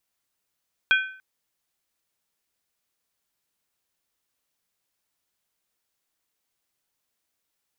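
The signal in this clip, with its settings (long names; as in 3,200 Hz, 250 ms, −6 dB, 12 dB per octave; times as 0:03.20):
struck skin length 0.29 s, lowest mode 1,530 Hz, modes 3, decay 0.50 s, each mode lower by 4 dB, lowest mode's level −14.5 dB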